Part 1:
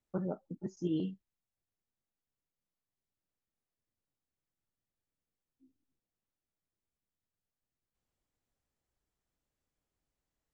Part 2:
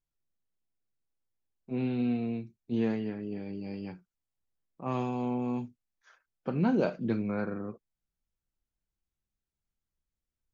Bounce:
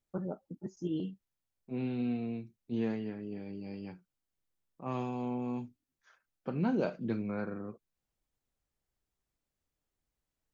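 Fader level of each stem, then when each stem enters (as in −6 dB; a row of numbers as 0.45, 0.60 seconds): −1.5, −4.0 decibels; 0.00, 0.00 seconds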